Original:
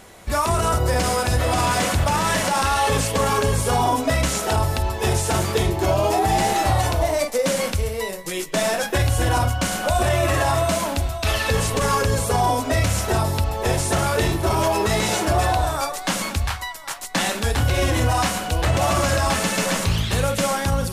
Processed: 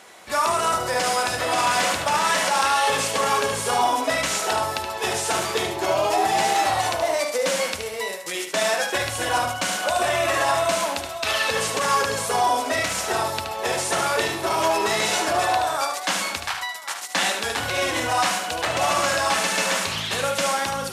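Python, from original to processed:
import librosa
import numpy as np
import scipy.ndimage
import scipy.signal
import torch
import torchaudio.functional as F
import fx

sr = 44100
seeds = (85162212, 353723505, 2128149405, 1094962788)

y = fx.weighting(x, sr, curve='A')
y = y + 10.0 ** (-7.0 / 20.0) * np.pad(y, (int(74 * sr / 1000.0), 0))[:len(y)]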